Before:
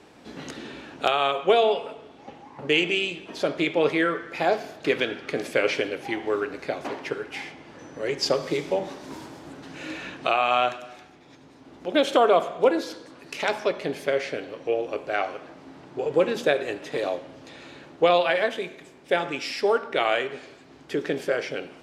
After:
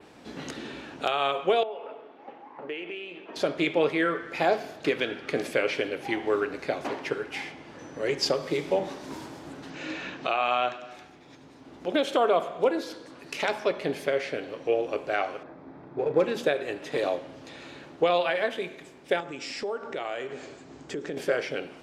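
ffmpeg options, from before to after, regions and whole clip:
-filter_complex "[0:a]asettb=1/sr,asplit=3[a][b][c];[a]atrim=end=1.634[d];[b]atrim=start=1.63:end=3.36,asetpts=PTS-STARTPTS,afade=t=in:d=0.004:c=qsin,afade=t=out:st=1.726:d=0.004:c=qsin,acompressor=threshold=-33dB:ratio=2.5:attack=3.2:release=140:knee=1:detection=peak,highpass=330,lowpass=2.1k[e];[c]atrim=start=3.356[f];[d][e]acrossfade=d=0.004:c1=hsin:c2=qsin[g];[g][f]acrossfade=d=0.004:c1=qsin:c2=hsin,asettb=1/sr,asplit=3[h][i][j];[h]atrim=end=9.704[k];[i]atrim=start=9.7:end=10.91,asetpts=PTS-STARTPTS,afade=t=in:d=0.004:c=qsin,afade=t=out:st=1.206:d=0.004:c=qsin,lowpass=f=7.1k:w=0.5412,lowpass=f=7.1k:w=1.3066,equalizer=f=80:t=o:w=0.48:g=-14[l];[j]atrim=start=10.906[m];[k][l]acrossfade=d=0.004:c1=hsin:c2=qsin[n];[n][m]acrossfade=d=0.004:c1=qsin:c2=hsin,asettb=1/sr,asplit=3[o][p][q];[o]atrim=end=15.434[r];[p]atrim=start=15.43:end=16.25,asetpts=PTS-STARTPTS,afade=t=in:d=0.004:c=qsin,afade=t=out:st=0.816:d=0.004:c=qsin,adynamicsmooth=sensitivity=2.5:basefreq=1.9k,bandreject=f=2.9k:w=6.3,asplit=2[s][t];[t]adelay=39,volume=-12dB[u];[s][u]amix=inputs=2:normalize=0,atrim=end_sample=36162[v];[q]atrim=start=16.246[w];[r][v]acrossfade=d=0.004:c1=hsin:c2=qsin[x];[x][w]acrossfade=d=0.004:c1=qsin:c2=hsin,asettb=1/sr,asplit=3[y][z][aa];[y]atrim=end=19.204[ab];[z]atrim=start=19.2:end=21.17,asetpts=PTS-STARTPTS,afade=t=in:d=0.004:c=qsin,afade=t=out:st=1.966:d=0.004:c=qsin,tiltshelf=f=1.5k:g=4,acompressor=threshold=-35dB:ratio=2.5:attack=3.2:release=140:knee=1:detection=peak,lowpass=f=7.4k:t=q:w=3.3[ac];[aa]atrim=start=21.166[ad];[ab][ac]acrossfade=d=0.004:c1=hsin:c2=qsin[ae];[ae][ad]acrossfade=d=0.004:c1=qsin:c2=hsin,adynamicequalizer=threshold=0.00398:dfrequency=6300:dqfactor=1.4:tfrequency=6300:tqfactor=1.4:attack=5:release=100:ratio=0.375:range=2.5:mode=cutabove:tftype=bell,alimiter=limit=-13dB:level=0:latency=1:release=454"

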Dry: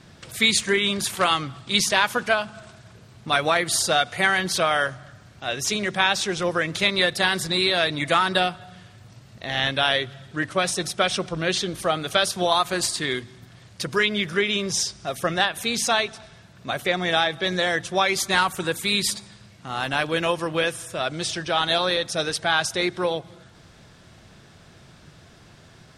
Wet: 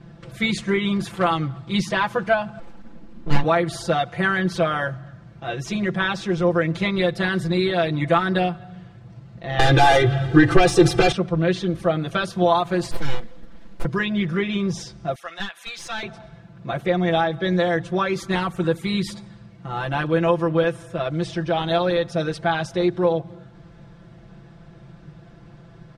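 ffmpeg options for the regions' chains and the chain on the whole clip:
-filter_complex "[0:a]asettb=1/sr,asplit=3[a][b][c];[a]atrim=end=2.594[d];[b]atrim=start=2.59:end=3.44,asetpts=PTS-STARTPTS,afade=t=in:d=0.004:c=qsin,afade=t=out:st=0.846:d=0.004:c=qsin,aeval=exprs='abs(val(0))':c=same,equalizer=f=230:t=o:w=0.57:g=10[e];[c]atrim=start=3.436[f];[d][e]acrossfade=d=0.004:c1=hsin:c2=qsin[g];[g][f]acrossfade=d=0.004:c1=qsin:c2=hsin,asettb=1/sr,asplit=3[h][i][j];[h]atrim=end=9.594[k];[i]atrim=start=9.59:end=11.12,asetpts=PTS-STARTPTS,afade=t=in:d=0.004:c=qsin,afade=t=out:st=1.526:d=0.004:c=qsin,aeval=exprs='0.501*sin(PI/2*3.55*val(0)/0.501)':c=same,aecho=1:1:2.5:0.87,atrim=end_sample=67473,acompressor=threshold=-11dB:ratio=6:attack=3.2:release=140:knee=1:detection=peak[l];[j]atrim=start=11.116[m];[k][l]acrossfade=d=0.004:c1=hsin:c2=qsin[n];[n][m]acrossfade=d=0.004:c1=qsin:c2=hsin,asettb=1/sr,asplit=3[o][p][q];[o]atrim=end=12.914[r];[p]atrim=start=12.91:end=13.85,asetpts=PTS-STARTPTS,afade=t=in:d=0.004:c=qsin,afade=t=out:st=0.936:d=0.004:c=qsin,aecho=1:1:2.1:0.76,atrim=end_sample=41454,aeval=exprs='abs(val(0))':c=same,acrusher=bits=6:mode=log:mix=0:aa=0.000001[s];[q]atrim=start=13.846[t];[r][s]acrossfade=d=0.004:c1=hsin:c2=qsin[u];[u][t]acrossfade=d=0.004:c1=qsin:c2=hsin,asettb=1/sr,asplit=3[v][w][x];[v]atrim=end=15.154[y];[w]atrim=start=15.15:end=16.03,asetpts=PTS-STARTPTS,afade=t=in:d=0.004:c=qsin,afade=t=out:st=0.876:d=0.004:c=qsin,highpass=1.5k,aeval=exprs='clip(val(0),-1,0.0891)':c=same[z];[x]atrim=start=16.026[aa];[y][z]acrossfade=d=0.004:c1=hsin:c2=qsin[ab];[ab][aa]acrossfade=d=0.004:c1=qsin:c2=hsin,lowpass=f=1k:p=1,lowshelf=f=190:g=6,aecho=1:1:5.9:0.96"

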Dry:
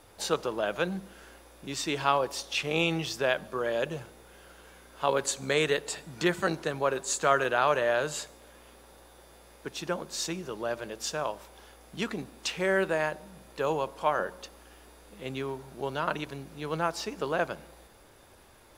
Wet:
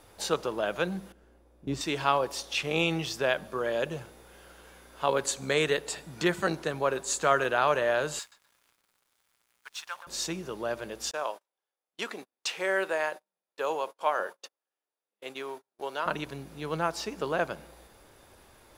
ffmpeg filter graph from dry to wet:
-filter_complex "[0:a]asettb=1/sr,asplit=3[a][b][c];[a]atrim=end=1.124[d];[b]atrim=start=1.12:end=1.81,asetpts=PTS-STARTPTS,afade=t=in:d=0.004:c=qsin,afade=t=out:st=0.686:d=0.004:c=qsin,agate=range=-12dB:threshold=-43dB:ratio=16:release=100:detection=peak,tiltshelf=f=810:g=9[e];[c]atrim=start=1.806[f];[d][e]acrossfade=d=0.004:c1=hsin:c2=qsin[g];[g][f]acrossfade=d=0.004:c1=qsin:c2=hsin,asettb=1/sr,asplit=3[h][i][j];[h]atrim=end=8.194[k];[i]atrim=start=8.19:end=10.07,asetpts=PTS-STARTPTS,afade=t=in:d=0.004:c=qsin,afade=t=out:st=1.876:d=0.004:c=qsin,highpass=f=980:w=0.5412,highpass=f=980:w=1.3066,aeval=exprs='sgn(val(0))*max(abs(val(0))-0.00188,0)':c=same,asplit=2[l][m];[m]adelay=126,lowpass=f=1.5k:p=1,volume=-9dB,asplit=2[n][o];[o]adelay=126,lowpass=f=1.5k:p=1,volume=0.49,asplit=2[p][q];[q]adelay=126,lowpass=f=1.5k:p=1,volume=0.49,asplit=2[r][s];[s]adelay=126,lowpass=f=1.5k:p=1,volume=0.49,asplit=2[t][u];[u]adelay=126,lowpass=f=1.5k:p=1,volume=0.49,asplit=2[v][w];[w]adelay=126,lowpass=f=1.5k:p=1,volume=0.49[x];[l][n][p][r][t][v][x]amix=inputs=7:normalize=0,atrim=end_sample=82908[y];[j]atrim=start=10.066[z];[k][y]acrossfade=d=0.004:c1=hsin:c2=qsin[aa];[aa][z]acrossfade=d=0.004:c1=qsin:c2=hsin,asettb=1/sr,asplit=3[ab][ac][ad];[ab]atrim=end=11.114[ae];[ac]atrim=start=11.11:end=16.06,asetpts=PTS-STARTPTS,afade=t=in:d=0.004:c=qsin,afade=t=out:st=4.946:d=0.004:c=qsin,highpass=440,agate=range=-38dB:threshold=-46dB:ratio=16:release=100:detection=peak[af];[ad]atrim=start=16.056[ag];[ae][af]acrossfade=d=0.004:c1=hsin:c2=qsin[ah];[ah][ag]acrossfade=d=0.004:c1=qsin:c2=hsin"

